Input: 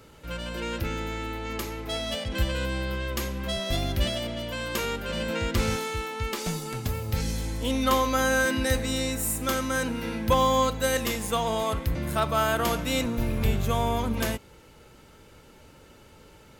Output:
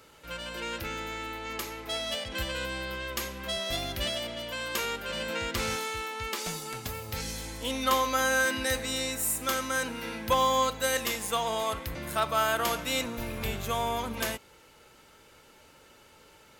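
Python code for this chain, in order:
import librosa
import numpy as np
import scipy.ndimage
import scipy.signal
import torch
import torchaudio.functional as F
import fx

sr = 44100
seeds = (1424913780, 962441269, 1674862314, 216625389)

y = fx.low_shelf(x, sr, hz=370.0, db=-12.0)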